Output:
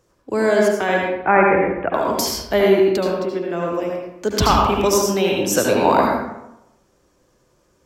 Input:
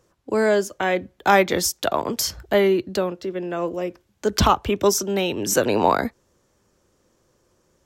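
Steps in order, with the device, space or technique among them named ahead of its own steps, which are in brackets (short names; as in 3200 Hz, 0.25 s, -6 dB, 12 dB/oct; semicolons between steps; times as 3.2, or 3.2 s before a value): 1.15–1.93 steep low-pass 2500 Hz 72 dB/oct; bathroom (reverb RT60 0.90 s, pre-delay 70 ms, DRR -1.5 dB)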